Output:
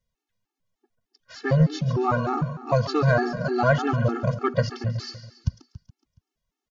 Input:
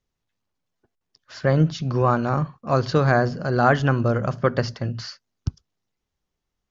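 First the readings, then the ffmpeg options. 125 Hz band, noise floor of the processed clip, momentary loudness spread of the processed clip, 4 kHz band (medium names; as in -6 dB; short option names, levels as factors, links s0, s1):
-1.5 dB, under -85 dBFS, 11 LU, -2.0 dB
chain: -af "aecho=1:1:140|280|420|560|700:0.251|0.128|0.0653|0.0333|0.017,aeval=exprs='0.668*(cos(1*acos(clip(val(0)/0.668,-1,1)))-cos(1*PI/2))+0.0211*(cos(5*acos(clip(val(0)/0.668,-1,1)))-cos(5*PI/2))':c=same,afftfilt=real='re*gt(sin(2*PI*3.3*pts/sr)*(1-2*mod(floor(b*sr/1024/230),2)),0)':imag='im*gt(sin(2*PI*3.3*pts/sr)*(1-2*mod(floor(b*sr/1024/230),2)),0)':win_size=1024:overlap=0.75"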